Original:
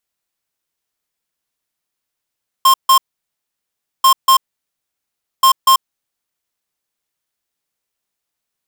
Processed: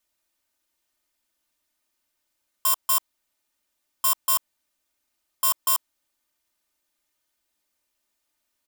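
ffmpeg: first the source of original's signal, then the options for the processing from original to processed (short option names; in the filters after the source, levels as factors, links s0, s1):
-f lavfi -i "aevalsrc='0.376*(2*lt(mod(1060*t,1),0.5)-1)*clip(min(mod(mod(t,1.39),0.24),0.09-mod(mod(t,1.39),0.24))/0.005,0,1)*lt(mod(t,1.39),0.48)':d=4.17:s=44100"
-filter_complex "[0:a]aecho=1:1:3.3:0.87,acrossover=split=6900[s0][s1];[s0]asoftclip=type=tanh:threshold=0.0531[s2];[s2][s1]amix=inputs=2:normalize=0"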